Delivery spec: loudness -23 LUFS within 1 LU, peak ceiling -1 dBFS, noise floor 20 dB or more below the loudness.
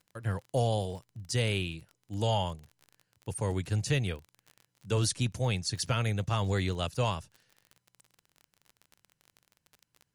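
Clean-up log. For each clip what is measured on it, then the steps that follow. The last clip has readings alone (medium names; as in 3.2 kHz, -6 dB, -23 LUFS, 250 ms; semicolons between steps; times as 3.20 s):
tick rate 28 per s; loudness -31.5 LUFS; peak level -16.5 dBFS; loudness target -23.0 LUFS
-> de-click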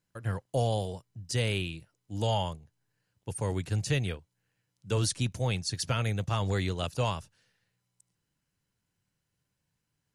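tick rate 0 per s; loudness -31.5 LUFS; peak level -16.5 dBFS; loudness target -23.0 LUFS
-> trim +8.5 dB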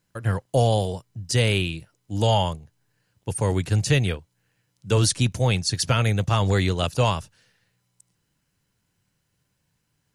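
loudness -23.0 LUFS; peak level -8.0 dBFS; noise floor -74 dBFS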